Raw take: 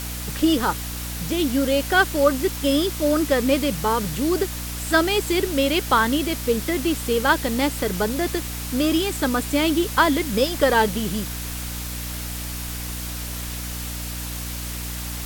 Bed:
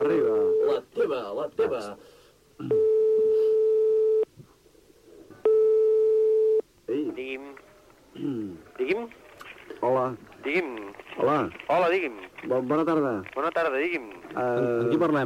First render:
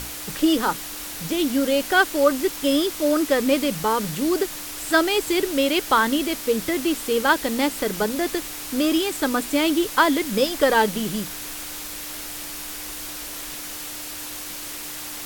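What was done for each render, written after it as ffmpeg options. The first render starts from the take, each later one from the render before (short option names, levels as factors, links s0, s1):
-af "bandreject=f=60:t=h:w=6,bandreject=f=120:t=h:w=6,bandreject=f=180:t=h:w=6,bandreject=f=240:t=h:w=6"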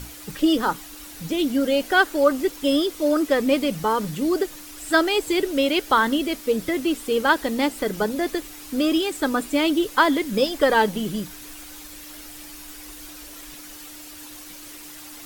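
-af "afftdn=nr=9:nf=-34"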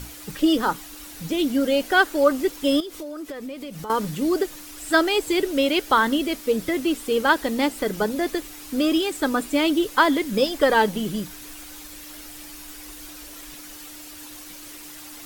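-filter_complex "[0:a]asettb=1/sr,asplit=3[s0][s1][s2];[s0]atrim=end=2.804[s3];[s1]atrim=start=2.8:end=3.9,asetpts=PTS-STARTPTS,afade=t=in:d=0.004:c=qsin,afade=t=out:st=1.096:d=0.004:c=qsin,acompressor=threshold=0.0282:ratio=8:attack=3.2:release=140:knee=1:detection=peak[s4];[s2]atrim=start=3.896[s5];[s3][s4]acrossfade=d=0.004:c1=hsin:c2=qsin[s6];[s6][s5]acrossfade=d=0.004:c1=qsin:c2=hsin"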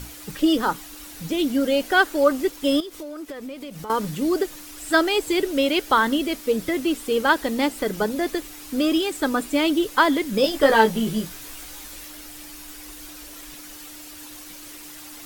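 -filter_complex "[0:a]asettb=1/sr,asplit=3[s0][s1][s2];[s0]atrim=end=2.334[s3];[s1]atrim=start=2.33:end=4.04,asetpts=PTS-STARTPTS,afade=t=in:d=0.004:c=qsin,afade=t=out:st=1.706:d=0.004:c=qsin,aeval=exprs='sgn(val(0))*max(abs(val(0))-0.00237,0)':c=same[s4];[s2]atrim=start=4.036[s5];[s3][s4]acrossfade=d=0.004:c1=hsin:c2=qsin[s6];[s6][s5]acrossfade=d=0.004:c1=qsin:c2=hsin,asettb=1/sr,asplit=3[s7][s8][s9];[s7]atrim=end=10.424[s10];[s8]atrim=start=10.42:end=12.08,asetpts=PTS-STARTPTS,afade=t=in:d=0.004:c=qsin,afade=t=out:st=1.656:d=0.004:c=qsin,asplit=2[s11][s12];[s12]adelay=18,volume=0.708[s13];[s11][s13]amix=inputs=2:normalize=0,atrim=end_sample=73206[s14];[s9]atrim=start=12.076[s15];[s10][s14]acrossfade=d=0.004:c1=hsin:c2=qsin[s16];[s16][s15]acrossfade=d=0.004:c1=qsin:c2=hsin"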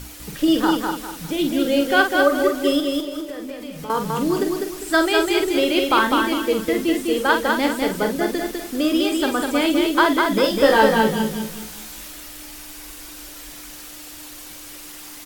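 -filter_complex "[0:a]asplit=2[s0][s1];[s1]adelay=46,volume=0.447[s2];[s0][s2]amix=inputs=2:normalize=0,aecho=1:1:201|402|603|804:0.668|0.227|0.0773|0.0263"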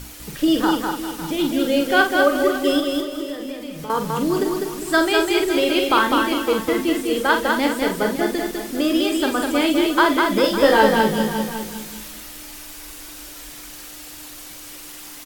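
-filter_complex "[0:a]asplit=2[s0][s1];[s1]adelay=38,volume=0.237[s2];[s0][s2]amix=inputs=2:normalize=0,aecho=1:1:556:0.211"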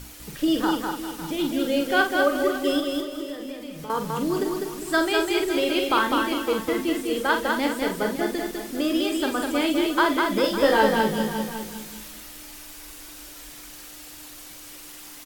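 -af "volume=0.596"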